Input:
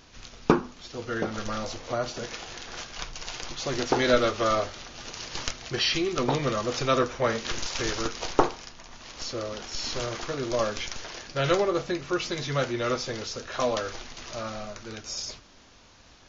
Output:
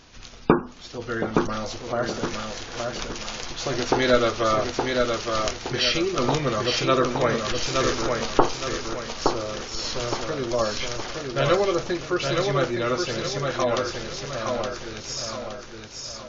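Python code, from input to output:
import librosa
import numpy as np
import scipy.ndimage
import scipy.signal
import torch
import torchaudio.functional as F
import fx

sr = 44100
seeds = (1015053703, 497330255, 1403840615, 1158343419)

p1 = fx.spec_gate(x, sr, threshold_db=-30, keep='strong')
p2 = p1 + fx.echo_feedback(p1, sr, ms=868, feedback_pct=41, wet_db=-4.0, dry=0)
y = F.gain(torch.from_numpy(p2), 2.5).numpy()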